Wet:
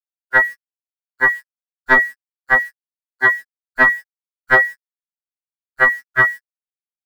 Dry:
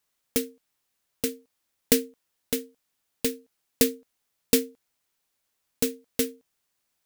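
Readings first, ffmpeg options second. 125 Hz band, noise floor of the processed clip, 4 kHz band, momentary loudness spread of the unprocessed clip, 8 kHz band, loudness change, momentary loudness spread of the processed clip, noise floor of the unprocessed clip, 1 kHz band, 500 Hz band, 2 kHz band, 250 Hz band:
+6.5 dB, under -85 dBFS, n/a, 16 LU, under -15 dB, +12.0 dB, 12 LU, -78 dBFS, +29.5 dB, +3.0 dB, +29.0 dB, -4.5 dB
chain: -af "afftfilt=real='real(if(lt(b,272),68*(eq(floor(b/68),0)*3+eq(floor(b/68),1)*0+eq(floor(b/68),2)*1+eq(floor(b/68),3)*2)+mod(b,68),b),0)':imag='imag(if(lt(b,272),68*(eq(floor(b/68),0)*3+eq(floor(b/68),1)*0+eq(floor(b/68),2)*1+eq(floor(b/68),3)*2)+mod(b,68),b),0)':win_size=2048:overlap=0.75,afftfilt=real='re*gte(hypot(re,im),0.02)':imag='im*gte(hypot(re,im),0.02)':win_size=1024:overlap=0.75,lowpass=f=1.5k:w=0.5412,lowpass=f=1.5k:w=1.3066,lowshelf=f=230:g=-4,apsyclip=30.5dB,acrusher=bits=6:mix=0:aa=0.000001,equalizer=f=88:t=o:w=0.57:g=-10.5,afftfilt=real='re*2.45*eq(mod(b,6),0)':imag='im*2.45*eq(mod(b,6),0)':win_size=2048:overlap=0.75"

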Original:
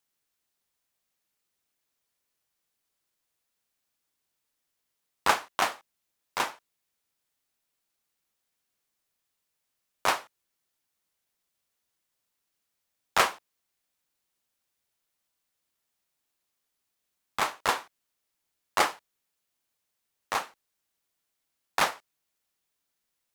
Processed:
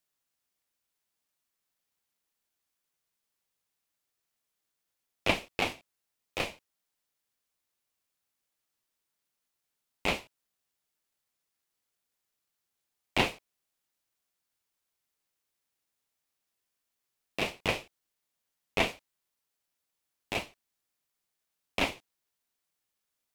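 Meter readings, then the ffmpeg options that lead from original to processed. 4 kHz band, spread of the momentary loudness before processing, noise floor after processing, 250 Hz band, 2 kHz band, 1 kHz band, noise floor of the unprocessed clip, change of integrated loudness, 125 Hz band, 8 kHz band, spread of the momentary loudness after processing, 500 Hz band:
-1.0 dB, 10 LU, -85 dBFS, +6.0 dB, -2.5 dB, -9.5 dB, -82 dBFS, -3.5 dB, +9.0 dB, -9.5 dB, 13 LU, 0.0 dB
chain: -filter_complex "[0:a]aeval=exprs='val(0)*sin(2*PI*1500*n/s)':c=same,acrossover=split=3900[a][b];[b]acompressor=threshold=-40dB:ratio=4:attack=1:release=60[c];[a][c]amix=inputs=2:normalize=0"

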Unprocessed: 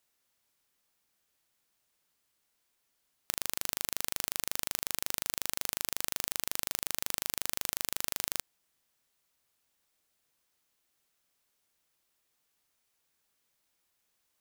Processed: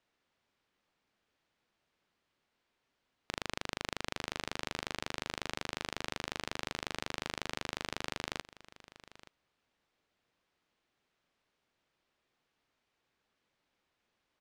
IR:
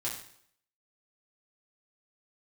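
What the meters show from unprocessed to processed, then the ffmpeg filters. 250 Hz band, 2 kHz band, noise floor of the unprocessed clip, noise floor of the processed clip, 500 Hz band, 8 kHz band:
+5.5 dB, +2.0 dB, -78 dBFS, -83 dBFS, +4.5 dB, -13.0 dB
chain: -filter_complex "[0:a]lowpass=3.4k,equalizer=f=270:t=o:w=2.7:g=3.5,asplit=2[a][b];[b]aecho=0:1:876:0.126[c];[a][c]amix=inputs=2:normalize=0,volume=2dB"

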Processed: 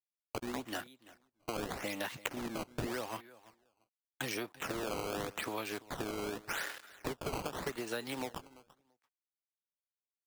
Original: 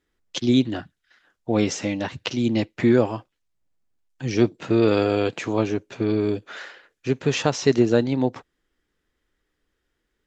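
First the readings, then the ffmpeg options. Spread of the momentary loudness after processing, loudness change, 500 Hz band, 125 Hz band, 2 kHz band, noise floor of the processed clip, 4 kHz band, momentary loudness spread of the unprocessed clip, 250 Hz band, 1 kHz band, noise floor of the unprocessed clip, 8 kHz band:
6 LU, -17.0 dB, -18.0 dB, -21.0 dB, -8.0 dB, under -85 dBFS, -11.5 dB, 14 LU, -21.0 dB, -9.0 dB, -77 dBFS, n/a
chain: -filter_complex "[0:a]aresample=16000,aeval=exprs='sgn(val(0))*max(abs(val(0))-0.00473,0)':c=same,aresample=44100,tiltshelf=f=670:g=-5,acompressor=threshold=-35dB:ratio=4,lowshelf=f=130:g=-10.5,acrossover=split=270|600|1400[a][b][c][d];[a]acompressor=threshold=-54dB:ratio=4[e];[b]acompressor=threshold=-53dB:ratio=4[f];[c]acompressor=threshold=-49dB:ratio=4[g];[d]acompressor=threshold=-46dB:ratio=4[h];[e][f][g][h]amix=inputs=4:normalize=0,aecho=1:1:338|676:0.112|0.0168,acrusher=samples=14:mix=1:aa=0.000001:lfo=1:lforange=22.4:lforate=0.85,volume=6.5dB"

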